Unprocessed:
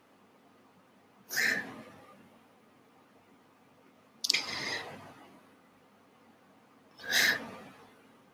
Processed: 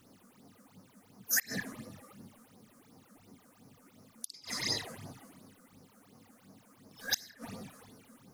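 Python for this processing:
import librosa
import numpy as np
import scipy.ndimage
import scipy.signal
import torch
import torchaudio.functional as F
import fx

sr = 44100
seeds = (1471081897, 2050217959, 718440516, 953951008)

y = fx.bass_treble(x, sr, bass_db=8, treble_db=12)
y = fx.gate_flip(y, sr, shuts_db=-13.0, range_db=-28)
y = fx.phaser_stages(y, sr, stages=8, low_hz=100.0, high_hz=3100.0, hz=2.8, feedback_pct=45)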